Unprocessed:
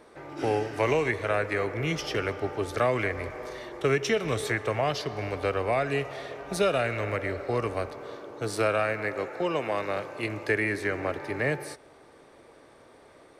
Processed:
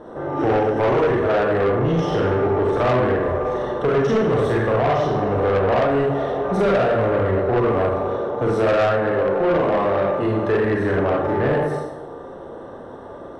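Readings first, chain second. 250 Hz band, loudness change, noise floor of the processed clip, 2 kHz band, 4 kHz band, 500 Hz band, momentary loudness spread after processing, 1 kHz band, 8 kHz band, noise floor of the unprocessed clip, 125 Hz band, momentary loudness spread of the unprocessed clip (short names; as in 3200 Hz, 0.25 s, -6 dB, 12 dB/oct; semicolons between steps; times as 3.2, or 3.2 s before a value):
+11.5 dB, +9.0 dB, -36 dBFS, +2.5 dB, +1.0 dB, +10.5 dB, 10 LU, +10.0 dB, n/a, -54 dBFS, +10.0 dB, 10 LU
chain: Schroeder reverb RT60 0.69 s, combs from 32 ms, DRR -4 dB; in parallel at +1 dB: compressor, threshold -30 dBFS, peak gain reduction 14.5 dB; on the sum: running mean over 19 samples; soft clip -21.5 dBFS, distortion -10 dB; gain +7.5 dB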